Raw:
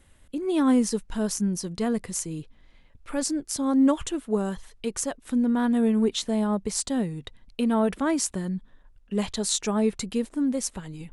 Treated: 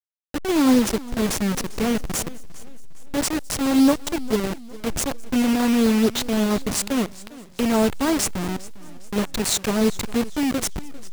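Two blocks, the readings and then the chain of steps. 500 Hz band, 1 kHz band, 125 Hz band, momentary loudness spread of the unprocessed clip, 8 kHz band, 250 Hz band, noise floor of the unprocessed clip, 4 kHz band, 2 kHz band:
+3.5 dB, +4.5 dB, +3.5 dB, 11 LU, +3.5 dB, +3.5 dB, −57 dBFS, +6.5 dB, +9.0 dB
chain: hold until the input has moved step −24 dBFS
on a send: delay with a high-pass on its return 209 ms, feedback 72%, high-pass 4,800 Hz, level −24 dB
on the sum: feedback echo with a swinging delay time 402 ms, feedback 41%, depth 139 cents, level −19.5 dB
level +4.5 dB

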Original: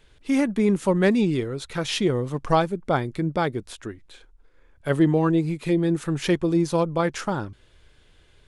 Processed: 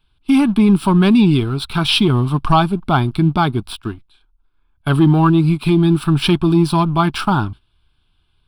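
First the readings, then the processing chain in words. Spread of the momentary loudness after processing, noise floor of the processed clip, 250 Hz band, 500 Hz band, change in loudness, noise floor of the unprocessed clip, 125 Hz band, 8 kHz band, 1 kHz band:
8 LU, −61 dBFS, +9.0 dB, +2.0 dB, +8.5 dB, −57 dBFS, +11.5 dB, +2.5 dB, +9.5 dB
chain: noise gate −42 dBFS, range −13 dB
leveller curve on the samples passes 1
in parallel at +2 dB: brickwall limiter −13.5 dBFS, peak gain reduction 7.5 dB
on the sum: phaser with its sweep stopped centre 1,900 Hz, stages 6
level +3 dB

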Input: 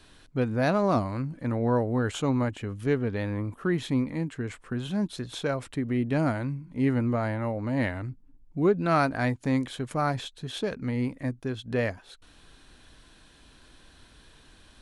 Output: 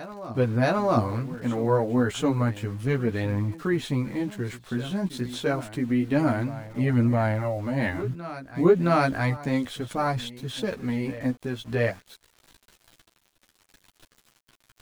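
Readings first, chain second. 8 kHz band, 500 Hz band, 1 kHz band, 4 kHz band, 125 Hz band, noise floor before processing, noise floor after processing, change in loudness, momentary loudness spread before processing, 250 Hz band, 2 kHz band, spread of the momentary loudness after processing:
+2.5 dB, +3.0 dB, +2.0 dB, +2.0 dB, +3.0 dB, −56 dBFS, −70 dBFS, +2.0 dB, 9 LU, +2.0 dB, +2.5 dB, 9 LU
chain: centre clipping without the shift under −46 dBFS
multi-voice chorus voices 2, 0.29 Hz, delay 13 ms, depth 4.3 ms
backwards echo 668 ms −15 dB
level +5 dB

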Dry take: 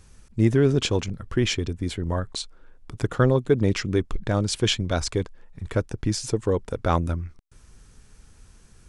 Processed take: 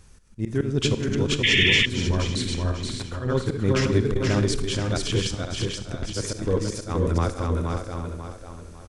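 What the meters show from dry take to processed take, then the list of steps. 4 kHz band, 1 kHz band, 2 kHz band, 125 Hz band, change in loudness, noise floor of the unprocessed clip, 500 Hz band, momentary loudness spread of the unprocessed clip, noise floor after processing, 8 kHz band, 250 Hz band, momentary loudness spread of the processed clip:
+6.0 dB, −1.5 dB, +8.5 dB, +0.5 dB, +0.5 dB, −54 dBFS, −1.5 dB, 12 LU, −44 dBFS, +1.5 dB, −0.5 dB, 13 LU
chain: feedback delay that plays each chunk backwards 272 ms, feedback 56%, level −3 dB
dynamic equaliser 730 Hz, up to −5 dB, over −35 dBFS, Q 1.3
volume swells 185 ms
on a send: single-tap delay 477 ms −4.5 dB
on the sum: four-comb reverb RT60 0.78 s, combs from 32 ms, DRR 12 dB
sound drawn into the spectrogram noise, 0:01.43–0:01.86, 1,700–3,600 Hz −19 dBFS
saturating transformer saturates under 120 Hz

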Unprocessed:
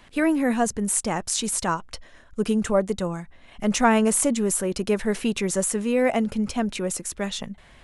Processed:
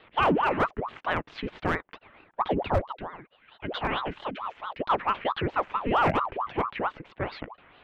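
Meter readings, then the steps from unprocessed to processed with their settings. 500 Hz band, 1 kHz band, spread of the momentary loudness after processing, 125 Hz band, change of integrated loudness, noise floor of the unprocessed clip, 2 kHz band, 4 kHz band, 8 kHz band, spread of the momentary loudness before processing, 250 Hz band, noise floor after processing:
−6.0 dB, +2.5 dB, 14 LU, −2.5 dB, −5.0 dB, −51 dBFS, −1.5 dB, −5.0 dB, below −35 dB, 10 LU, −11.0 dB, −66 dBFS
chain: gain on a spectral selection 0:02.78–0:04.80, 210–1,900 Hz −10 dB
single-sideband voice off tune −260 Hz 250–2,900 Hz
hard clipping −17.5 dBFS, distortion −17 dB
ring modulator whose carrier an LFO sweeps 710 Hz, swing 70%, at 4.5 Hz
level +2.5 dB

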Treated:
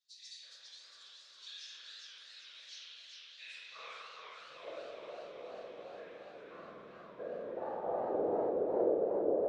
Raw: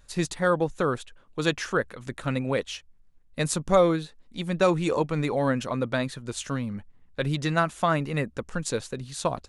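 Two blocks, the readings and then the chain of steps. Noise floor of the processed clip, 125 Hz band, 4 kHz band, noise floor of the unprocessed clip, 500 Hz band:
−57 dBFS, −32.5 dB, −12.0 dB, −57 dBFS, −9.5 dB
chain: low-shelf EQ 210 Hz +6 dB
in parallel at 0 dB: brickwall limiter −18 dBFS, peak gain reduction 11.5 dB
on the sum: band-pass filter sweep 3,800 Hz → 470 Hz, 0:05.41–0:08.18
resonators tuned to a chord F#3 major, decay 0.63 s
band-pass filter sweep 5,400 Hz → 450 Hz, 0:02.75–0:04.80
random phases in short frames
on a send: feedback delay with all-pass diffusion 1,134 ms, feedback 43%, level −10 dB
on the sum: spring reverb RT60 2.3 s, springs 44/50 ms, chirp 65 ms, DRR −6.5 dB
feedback echo with a swinging delay time 411 ms, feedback 55%, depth 159 cents, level −3.5 dB
level +9.5 dB

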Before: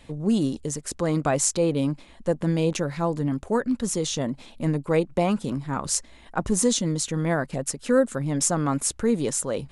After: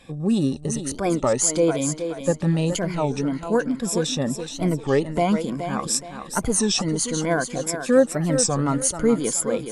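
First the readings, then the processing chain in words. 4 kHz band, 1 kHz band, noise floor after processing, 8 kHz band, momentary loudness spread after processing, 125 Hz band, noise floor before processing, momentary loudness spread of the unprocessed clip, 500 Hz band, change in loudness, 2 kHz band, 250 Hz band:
+4.0 dB, +2.5 dB, −38 dBFS, +3.0 dB, 7 LU, +1.5 dB, −50 dBFS, 7 LU, +3.0 dB, +2.5 dB, +3.0 dB, +2.0 dB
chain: rippled gain that drifts along the octave scale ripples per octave 1.8, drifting +0.52 Hz, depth 13 dB
feedback echo with a high-pass in the loop 422 ms, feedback 36%, high-pass 180 Hz, level −8 dB
wow of a warped record 33 1/3 rpm, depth 250 cents

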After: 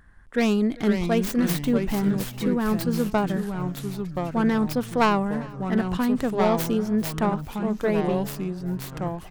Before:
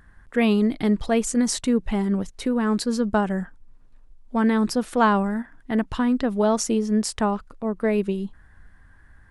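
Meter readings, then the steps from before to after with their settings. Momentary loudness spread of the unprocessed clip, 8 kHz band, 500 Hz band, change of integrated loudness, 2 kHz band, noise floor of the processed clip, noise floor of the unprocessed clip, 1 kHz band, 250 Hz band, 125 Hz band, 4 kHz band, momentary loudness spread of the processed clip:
9 LU, −7.0 dB, −0.5 dB, −1.5 dB, −0.5 dB, −41 dBFS, −52 dBFS, −1.0 dB, −1.0 dB, +4.0 dB, −1.5 dB, 8 LU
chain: stylus tracing distortion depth 0.45 ms
delay with pitch and tempo change per echo 431 ms, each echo −3 semitones, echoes 3, each echo −6 dB
on a send: repeating echo 396 ms, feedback 43%, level −23 dB
on the sum: level −2 dB

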